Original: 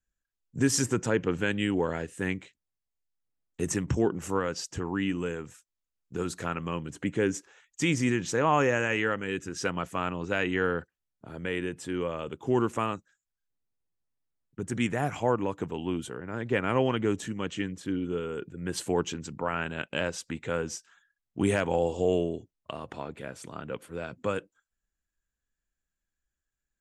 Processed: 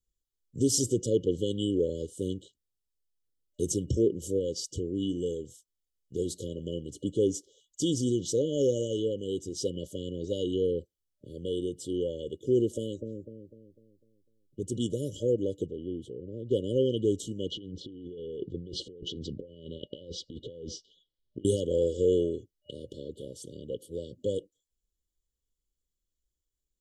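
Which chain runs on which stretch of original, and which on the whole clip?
0:12.74–0:14.62: double-tracking delay 13 ms −13 dB + delay with a low-pass on its return 250 ms, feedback 41%, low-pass 500 Hz, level −3 dB
0:15.66–0:16.51: low-pass filter 1,000 Hz 6 dB per octave + downward compressor 1.5 to 1, threshold −37 dBFS
0:17.51–0:21.45: low-pass filter 4,300 Hz 24 dB per octave + compressor whose output falls as the input rises −40 dBFS
whole clip: brick-wall band-stop 600–2,900 Hz; dynamic equaliser 150 Hz, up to −4 dB, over −50 dBFS, Q 4.2; comb filter 2.4 ms, depth 33%

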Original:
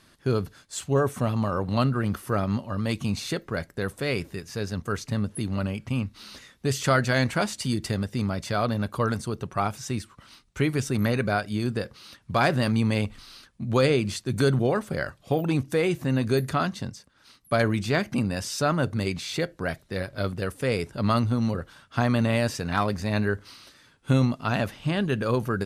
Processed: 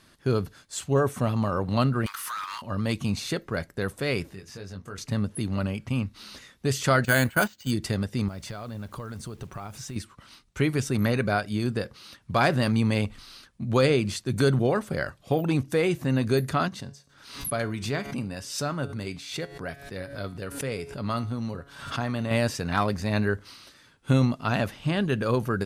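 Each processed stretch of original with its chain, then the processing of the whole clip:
0:02.06–0:02.62: Butterworth high-pass 930 Hz 72 dB per octave + downward compressor 3 to 1, threshold −37 dBFS + leveller curve on the samples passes 3
0:04.29–0:04.98: high-shelf EQ 11,000 Hz −7.5 dB + downward compressor 2 to 1, threshold −45 dBFS + double-tracking delay 21 ms −5.5 dB
0:07.05–0:07.71: noise gate −29 dBFS, range −14 dB + hollow resonant body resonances 1,500/3,000 Hz, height 10 dB, ringing for 25 ms + bad sample-rate conversion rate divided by 4×, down filtered, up hold
0:08.28–0:09.96: downward compressor, threshold −35 dBFS + low-shelf EQ 65 Hz +11 dB + bit-depth reduction 10 bits, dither none
0:16.68–0:22.31: tuned comb filter 140 Hz, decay 0.38 s + background raised ahead of every attack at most 80 dB per second
whole clip: no processing

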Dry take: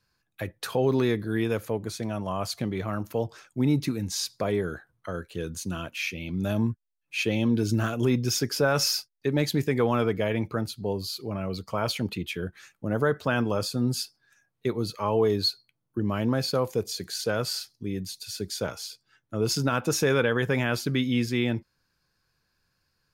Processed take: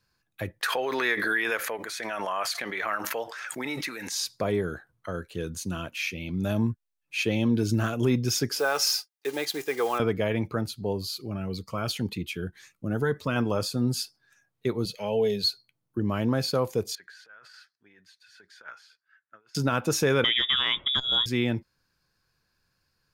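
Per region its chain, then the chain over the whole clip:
0:00.61–0:04.12: high-pass filter 610 Hz + parametric band 1,800 Hz +12 dB 0.99 octaves + background raised ahead of every attack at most 28 dB per second
0:08.59–0:10.00: one scale factor per block 5 bits + high-pass filter 500 Hz + comb filter 2.5 ms, depth 40%
0:11.18–0:13.36: parametric band 630 Hz −4.5 dB 0.57 octaves + phaser whose notches keep moving one way rising 1.9 Hz
0:14.85–0:15.44: parametric band 2,900 Hz +7 dB 0.86 octaves + phaser with its sweep stopped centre 310 Hz, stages 6
0:16.95–0:19.55: transient designer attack −3 dB, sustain +2 dB + compressor whose output falls as the input rises −32 dBFS, ratio −0.5 + resonant band-pass 1,600 Hz, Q 4.6
0:20.24–0:21.26: voice inversion scrambler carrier 3,600 Hz + saturating transformer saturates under 430 Hz
whole clip: no processing

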